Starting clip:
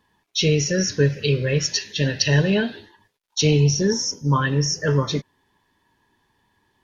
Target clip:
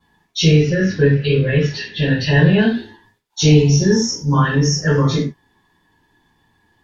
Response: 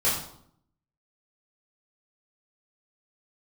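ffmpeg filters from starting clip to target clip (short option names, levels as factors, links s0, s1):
-filter_complex "[0:a]asettb=1/sr,asplit=3[s0][s1][s2];[s0]atrim=end=0.584[s3];[s1]atrim=start=0.58:end=2.58,asetpts=PTS-STARTPTS,afade=t=in:d=0.004:c=qsin,afade=t=out:st=1.996:d=0.004:c=qsin,lowpass=f=3800:w=0.5412,lowpass=f=3800:w=1.3066[s4];[s2]atrim=start=2.576[s5];[s3][s4]acrossfade=d=0.004:c1=hsin:c2=qsin[s6];[s6][s5]acrossfade=d=0.004:c1=qsin:c2=hsin[s7];[1:a]atrim=start_sample=2205,afade=t=out:st=0.24:d=0.01,atrim=end_sample=11025,asetrate=66150,aresample=44100[s8];[s7][s8]afir=irnorm=-1:irlink=0,volume=0.596"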